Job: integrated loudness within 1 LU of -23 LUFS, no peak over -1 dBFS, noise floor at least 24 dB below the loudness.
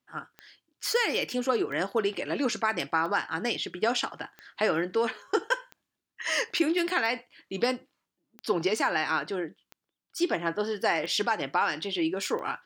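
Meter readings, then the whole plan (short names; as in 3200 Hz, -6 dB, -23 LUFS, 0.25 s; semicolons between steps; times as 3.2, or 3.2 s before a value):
clicks 10; loudness -28.5 LUFS; peak -11.5 dBFS; loudness target -23.0 LUFS
-> de-click; gain +5.5 dB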